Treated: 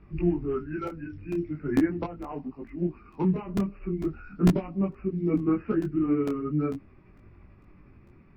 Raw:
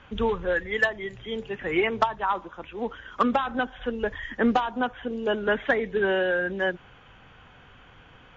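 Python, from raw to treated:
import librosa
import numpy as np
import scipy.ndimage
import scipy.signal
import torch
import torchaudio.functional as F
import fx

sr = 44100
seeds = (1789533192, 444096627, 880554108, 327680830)

y = fx.pitch_heads(x, sr, semitones=-4.5)
y = fx.low_shelf_res(y, sr, hz=450.0, db=13.0, q=1.5)
y = fx.buffer_crackle(y, sr, first_s=0.87, period_s=0.45, block=128, kind='repeat')
y = fx.detune_double(y, sr, cents=14)
y = y * 10.0 ** (-7.0 / 20.0)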